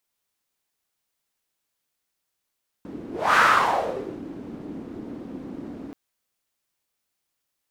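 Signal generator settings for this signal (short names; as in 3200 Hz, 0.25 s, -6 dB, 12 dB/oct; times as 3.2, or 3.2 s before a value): whoosh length 3.08 s, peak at 0.52, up 0.29 s, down 0.92 s, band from 280 Hz, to 1400 Hz, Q 3.6, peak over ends 20 dB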